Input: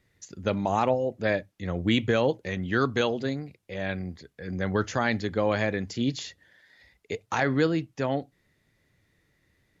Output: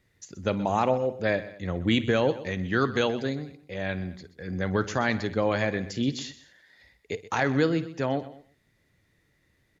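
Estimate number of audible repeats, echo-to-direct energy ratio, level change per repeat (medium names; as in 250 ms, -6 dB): 3, -13.5 dB, no regular repeats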